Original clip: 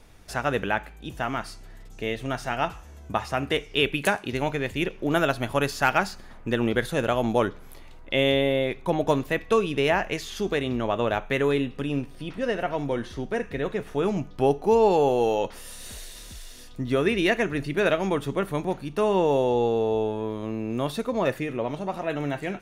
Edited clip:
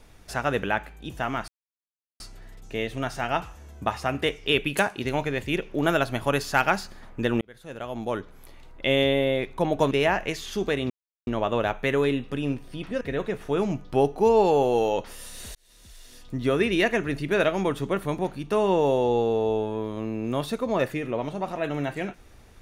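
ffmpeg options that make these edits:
-filter_complex "[0:a]asplit=7[a][b][c][d][e][f][g];[a]atrim=end=1.48,asetpts=PTS-STARTPTS,afade=t=out:st=1.476:d=0.004:c=hsin,apad=pad_dur=0.72[h];[b]atrim=start=1.48:end=6.69,asetpts=PTS-STARTPTS,afade=t=in:d=0.004:c=hsin,afade=t=out:st=5.206:d=0.004:c=hsin[i];[c]atrim=start=6.69:end=9.192,asetpts=PTS-STARTPTS,afade=t=in:d=1.46[j];[d]atrim=start=9.748:end=10.74,asetpts=PTS-STARTPTS,afade=t=out:st=0.988:d=0.004:c=hsin,apad=pad_dur=0.37[k];[e]atrim=start=10.74:end=12.482,asetpts=PTS-STARTPTS,afade=t=in:d=0.004:c=hsin[l];[f]atrim=start=13.468:end=16.01,asetpts=PTS-STARTPTS,afade=t=out:st=2.538:d=0.004:c=hsin[m];[g]atrim=start=16.01,asetpts=PTS-STARTPTS,afade=t=in:d=0.83[n];[h][i][j]concat=n=3:v=0:a=1[o];[k][l]concat=n=2:v=0:a=1[p];[o][p]acrossfade=d=0.004:c1=hsin:c2=hsin[q];[m][n]concat=n=2:v=0:a=1[r];[q][r]acrossfade=d=0.004:c1=hsin:c2=hsin"

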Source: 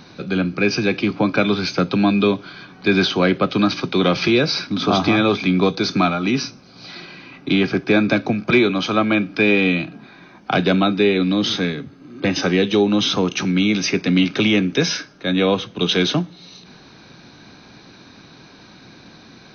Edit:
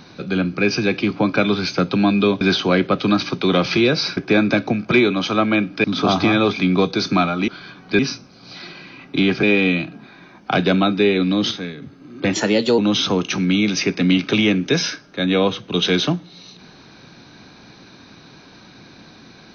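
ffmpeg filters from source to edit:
-filter_complex "[0:a]asplit=11[a][b][c][d][e][f][g][h][i][j][k];[a]atrim=end=2.412[l];[b]atrim=start=2.918:end=4.682[m];[c]atrim=start=7.758:end=9.432[n];[d]atrim=start=4.678:end=6.322[o];[e]atrim=start=2.408:end=2.922[p];[f]atrim=start=6.318:end=7.762[q];[g]atrim=start=9.428:end=11.512[r];[h]atrim=start=11.508:end=11.822,asetpts=PTS-STARTPTS,volume=-7.5dB[s];[i]atrim=start=11.818:end=12.334[t];[j]atrim=start=12.33:end=12.85,asetpts=PTS-STARTPTS,asetrate=50715,aresample=44100[u];[k]atrim=start=12.846[v];[l][m]acrossfade=d=0.004:c1=hsin:c2=hsin[w];[w][n]acrossfade=d=0.004:c1=hsin:c2=hsin[x];[x][o]acrossfade=d=0.004:c1=hsin:c2=hsin[y];[y][p]acrossfade=d=0.004:c1=hsin:c2=hsin[z];[z][q]acrossfade=d=0.004:c1=hsin:c2=hsin[aa];[aa][r]acrossfade=d=0.004:c1=hsin:c2=hsin[ab];[ab][s]acrossfade=d=0.004:c1=hsin:c2=hsin[ac];[ac][t]acrossfade=d=0.004:c1=hsin:c2=hsin[ad];[ad][u]acrossfade=d=0.004:c1=hsin:c2=hsin[ae];[ae][v]acrossfade=d=0.004:c1=hsin:c2=hsin"

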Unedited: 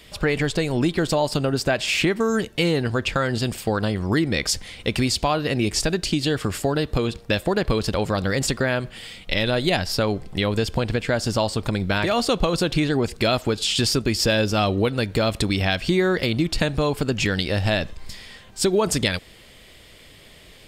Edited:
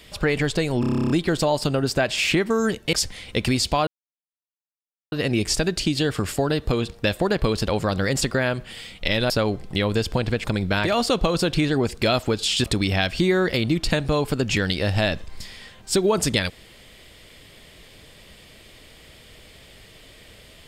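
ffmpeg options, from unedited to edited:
-filter_complex "[0:a]asplit=16[a][b][c][d][e][f][g][h][i][j][k][l][m][n][o][p];[a]atrim=end=0.832[q];[b]atrim=start=0.798:end=0.832[r];[c]atrim=start=0.798:end=0.832[s];[d]atrim=start=0.798:end=0.832[t];[e]atrim=start=0.798:end=0.832[u];[f]atrim=start=0.798:end=0.832[v];[g]atrim=start=0.798:end=0.832[w];[h]atrim=start=0.798:end=0.832[x];[i]atrim=start=0.798:end=0.832[y];[j]atrim=start=0.798:end=0.832[z];[k]atrim=start=0.798:end=2.632[aa];[l]atrim=start=4.438:end=5.38,asetpts=PTS-STARTPTS,afade=t=out:st=0.938:d=0.004:c=hsin,apad=pad_dur=1.25[ab];[m]atrim=start=5.38:end=9.562,asetpts=PTS-STARTPTS,afade=t=in:d=0.004:c=hsin[ac];[n]atrim=start=9.918:end=11.062[ad];[o]atrim=start=11.628:end=13.832[ae];[p]atrim=start=15.328[af];[q][r]acrossfade=d=0.004:c1=hsin:c2=hsin[ag];[ag][s]acrossfade=d=0.004:c1=hsin:c2=hsin[ah];[ah][t]acrossfade=d=0.004:c1=hsin:c2=hsin[ai];[ai][u]acrossfade=d=0.004:c1=hsin:c2=hsin[aj];[aj][v]acrossfade=d=0.004:c1=hsin:c2=hsin[ak];[ak][w]acrossfade=d=0.004:c1=hsin:c2=hsin[al];[al][x]acrossfade=d=0.004:c1=hsin:c2=hsin[am];[am][y]acrossfade=d=0.004:c1=hsin:c2=hsin[an];[an][z]acrossfade=d=0.004:c1=hsin:c2=hsin[ao];[ao][aa]acrossfade=d=0.004:c1=hsin:c2=hsin[ap];[ab][ac]concat=n=2:v=0:a=1[aq];[ap][aq]acrossfade=d=0.004:c1=hsin:c2=hsin[ar];[ar][ad]acrossfade=d=0.004:c1=hsin:c2=hsin[as];[as][ae]acrossfade=d=0.004:c1=hsin:c2=hsin[at];[at][af]acrossfade=d=0.004:c1=hsin:c2=hsin"

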